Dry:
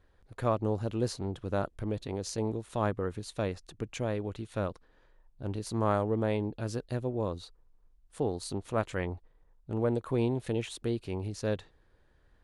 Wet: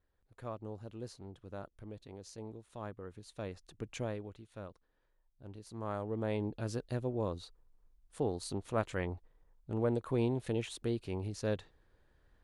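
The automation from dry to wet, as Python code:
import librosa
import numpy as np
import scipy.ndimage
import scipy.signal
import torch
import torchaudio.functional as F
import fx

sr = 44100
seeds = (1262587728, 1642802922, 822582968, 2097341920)

y = fx.gain(x, sr, db=fx.line((3.01, -14.0), (4.0, -4.0), (4.41, -14.0), (5.7, -14.0), (6.46, -3.0)))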